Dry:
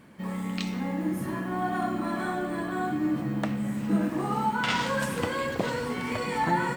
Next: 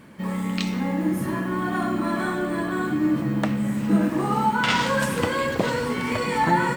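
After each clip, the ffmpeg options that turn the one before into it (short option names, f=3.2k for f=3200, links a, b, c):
-af "bandreject=f=730:w=17,volume=5.5dB"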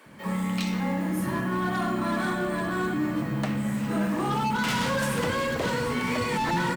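-filter_complex "[0:a]acrossover=split=340[a][b];[a]adelay=60[c];[c][b]amix=inputs=2:normalize=0,acrossover=split=400[d][e];[d]alimiter=limit=-22.5dB:level=0:latency=1[f];[e]asoftclip=type=hard:threshold=-26.5dB[g];[f][g]amix=inputs=2:normalize=0"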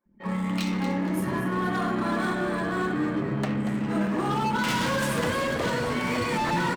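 -filter_complex "[0:a]anlmdn=1.58,asplit=2[a][b];[b]asplit=4[c][d][e][f];[c]adelay=235,afreqshift=100,volume=-9.5dB[g];[d]adelay=470,afreqshift=200,volume=-19.1dB[h];[e]adelay=705,afreqshift=300,volume=-28.8dB[i];[f]adelay=940,afreqshift=400,volume=-38.4dB[j];[g][h][i][j]amix=inputs=4:normalize=0[k];[a][k]amix=inputs=2:normalize=0"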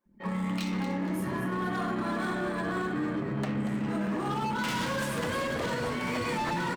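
-af "alimiter=limit=-23dB:level=0:latency=1:release=115"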